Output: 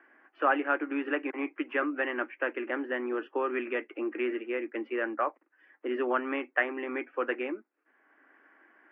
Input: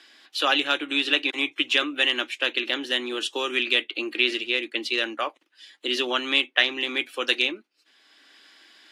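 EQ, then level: HPF 230 Hz 24 dB/oct; inverse Chebyshev low-pass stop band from 3600 Hz, stop band 40 dB; air absorption 160 m; 0.0 dB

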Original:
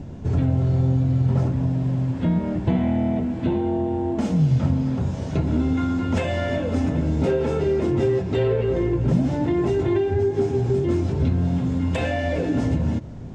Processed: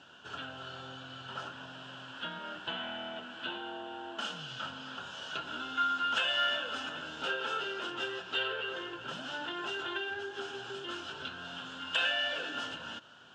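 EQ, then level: double band-pass 2100 Hz, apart 1 oct; tilt +2.5 dB/oct; +8.0 dB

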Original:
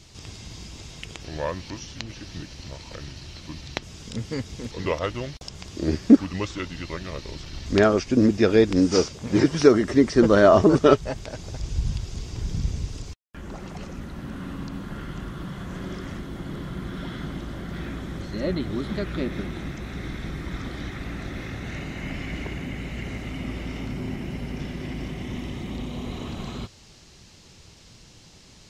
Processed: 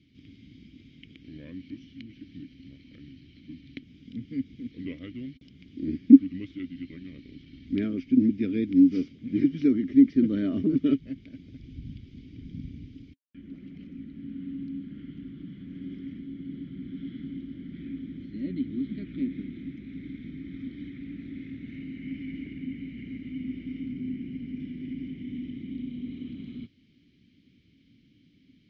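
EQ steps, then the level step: vowel filter i; air absorption 270 m; tone controls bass +13 dB, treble +11 dB; -1.0 dB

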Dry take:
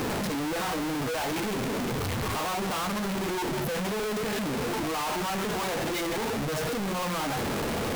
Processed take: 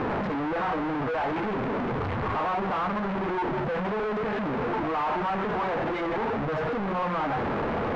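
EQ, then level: LPF 2100 Hz 12 dB/oct; air absorption 54 m; bell 1000 Hz +5 dB 2 oct; 0.0 dB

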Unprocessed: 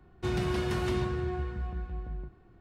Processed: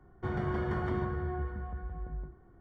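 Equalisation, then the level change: polynomial smoothing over 41 samples; notches 60/120/180/240/300/360 Hz; notches 60/120/180/240/300/360 Hz; 0.0 dB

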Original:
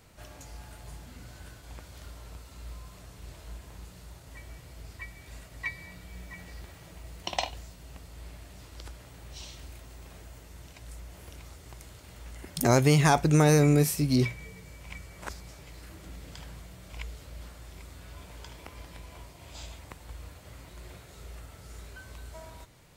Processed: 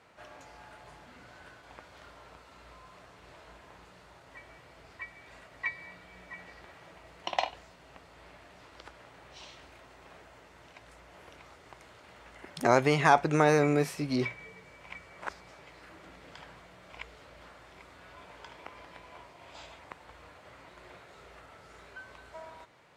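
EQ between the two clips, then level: band-pass 1700 Hz, Q 0.55; high shelf 2000 Hz -10 dB; +6.5 dB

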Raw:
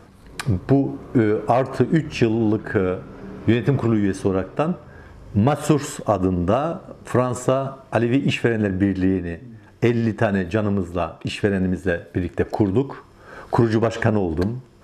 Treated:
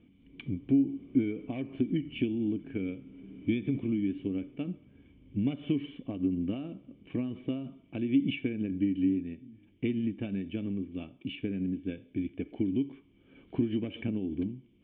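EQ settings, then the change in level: vocal tract filter i; tilt shelf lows -5 dB, about 1100 Hz; 0.0 dB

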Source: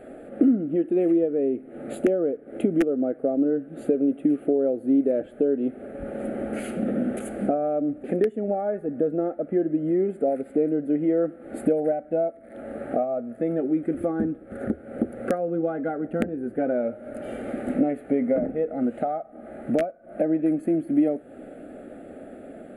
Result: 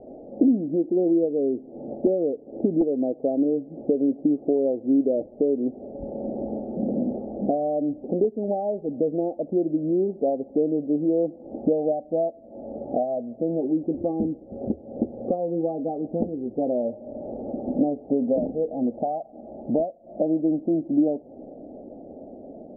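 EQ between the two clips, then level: steep low-pass 950 Hz 72 dB/oct; 0.0 dB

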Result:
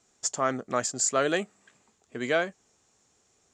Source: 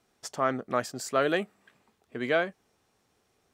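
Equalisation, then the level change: synth low-pass 7100 Hz, resonance Q 7.3; 0.0 dB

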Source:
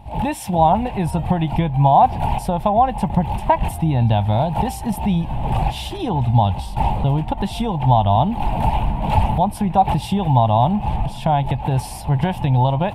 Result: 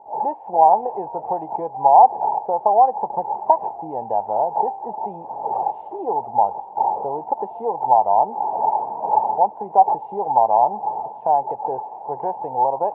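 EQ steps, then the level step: resonant high-pass 440 Hz, resonance Q 4.9; synth low-pass 870 Hz, resonance Q 4.7; air absorption 480 m; -10.0 dB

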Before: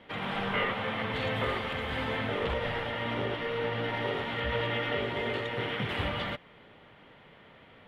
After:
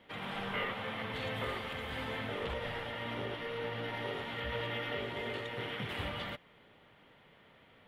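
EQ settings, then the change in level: high shelf 7000 Hz +11.5 dB; -7.0 dB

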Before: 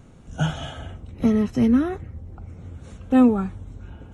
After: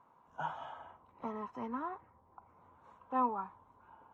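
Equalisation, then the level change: band-pass 990 Hz, Q 12; +8.0 dB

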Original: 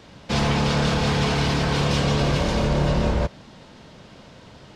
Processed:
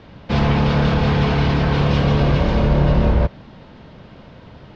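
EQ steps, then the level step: air absorption 230 m; low shelf 130 Hz +5 dB; +3.5 dB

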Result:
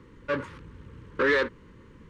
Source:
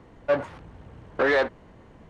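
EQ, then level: Butterworth band-stop 710 Hz, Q 1.5; 0.0 dB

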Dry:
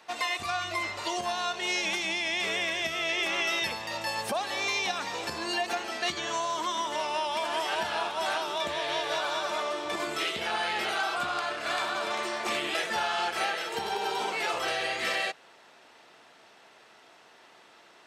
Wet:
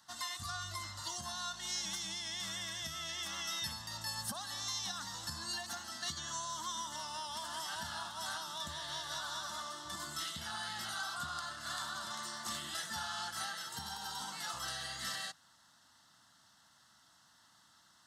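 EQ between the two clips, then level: passive tone stack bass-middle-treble 6-0-2; fixed phaser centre 1000 Hz, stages 4; +15.0 dB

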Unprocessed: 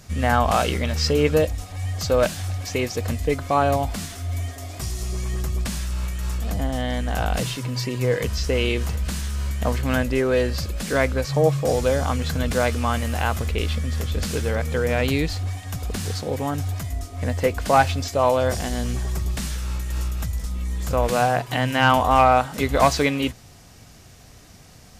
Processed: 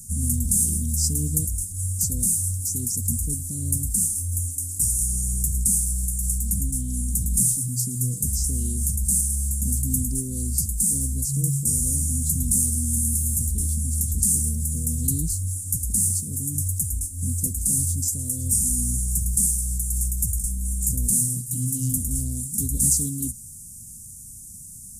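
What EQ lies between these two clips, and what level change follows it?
elliptic band-stop 220–7200 Hz, stop band 60 dB; high shelf 5700 Hz +10.5 dB; bell 9500 Hz +14 dB 0.71 oct; 0.0 dB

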